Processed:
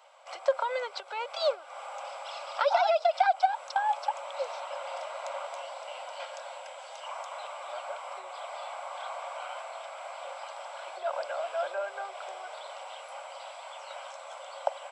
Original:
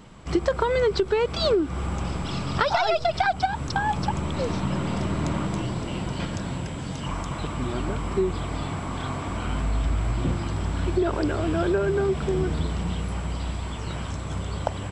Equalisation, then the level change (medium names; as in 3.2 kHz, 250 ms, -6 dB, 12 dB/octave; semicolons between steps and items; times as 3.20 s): rippled Chebyshev high-pass 540 Hz, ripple 3 dB; tilt shelf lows +6 dB, about 760 Hz; band-stop 1.8 kHz, Q 5.8; 0.0 dB